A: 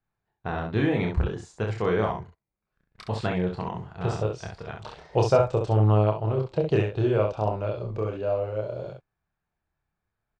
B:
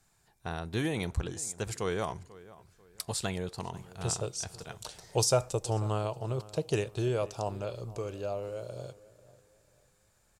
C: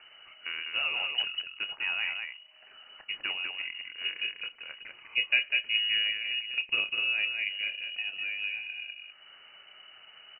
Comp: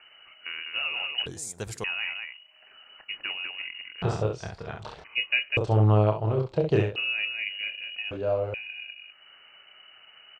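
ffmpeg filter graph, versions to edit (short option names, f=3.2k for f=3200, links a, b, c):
-filter_complex "[0:a]asplit=3[a][b][c];[2:a]asplit=5[d][e][f][g][h];[d]atrim=end=1.262[i];[1:a]atrim=start=1.258:end=1.842[j];[e]atrim=start=1.838:end=4.022[k];[a]atrim=start=4.018:end=5.042[l];[f]atrim=start=5.038:end=5.572[m];[b]atrim=start=5.568:end=6.962[n];[g]atrim=start=6.958:end=8.112[o];[c]atrim=start=8.108:end=8.542[p];[h]atrim=start=8.538[q];[i][j]acrossfade=d=0.004:c1=hsin:c2=hsin[r];[r][k]acrossfade=d=0.004:c1=hsin:c2=hsin[s];[s][l]acrossfade=d=0.004:c1=hsin:c2=hsin[t];[t][m]acrossfade=d=0.004:c1=hsin:c2=hsin[u];[u][n]acrossfade=d=0.004:c1=hsin:c2=hsin[v];[v][o]acrossfade=d=0.004:c1=hsin:c2=hsin[w];[w][p]acrossfade=d=0.004:c1=hsin:c2=hsin[x];[x][q]acrossfade=d=0.004:c1=hsin:c2=hsin"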